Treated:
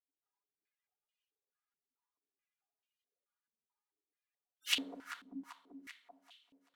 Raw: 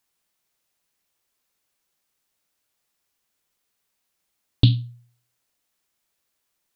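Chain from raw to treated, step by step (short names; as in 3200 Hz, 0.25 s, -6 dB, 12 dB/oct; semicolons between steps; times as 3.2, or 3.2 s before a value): notch comb 410 Hz; wrapped overs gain 19 dB; reverse; compressor, threshold -38 dBFS, peak gain reduction 15 dB; reverse; spectral gate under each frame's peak -25 dB weak; echo with dull and thin repeats by turns 0.194 s, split 940 Hz, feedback 77%, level -9 dB; on a send at -5 dB: reverb RT60 0.60 s, pre-delay 4 ms; on the sum: maximiser +32.5 dB; stepped band-pass 4.6 Hz 240–2900 Hz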